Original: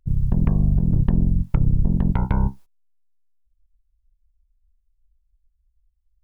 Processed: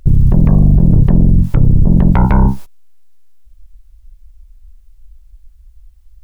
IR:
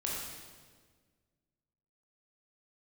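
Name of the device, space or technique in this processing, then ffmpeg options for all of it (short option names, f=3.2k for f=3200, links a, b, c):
mastering chain: -af "equalizer=f=590:t=o:w=0.27:g=2.5,acompressor=threshold=-22dB:ratio=1.5,asoftclip=type=tanh:threshold=-14.5dB,alimiter=level_in=26.5dB:limit=-1dB:release=50:level=0:latency=1,volume=-2dB"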